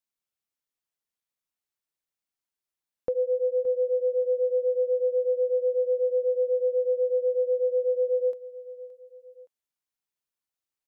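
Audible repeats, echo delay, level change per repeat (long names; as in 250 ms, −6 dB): 2, 570 ms, −6.5 dB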